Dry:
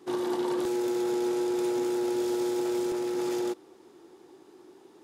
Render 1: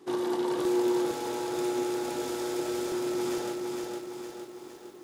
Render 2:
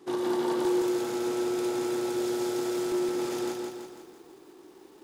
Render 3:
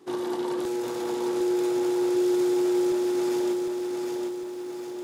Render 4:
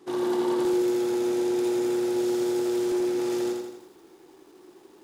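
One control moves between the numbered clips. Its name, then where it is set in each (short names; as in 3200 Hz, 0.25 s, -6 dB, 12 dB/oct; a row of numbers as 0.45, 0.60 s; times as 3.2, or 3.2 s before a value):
lo-fi delay, time: 460, 166, 756, 83 ms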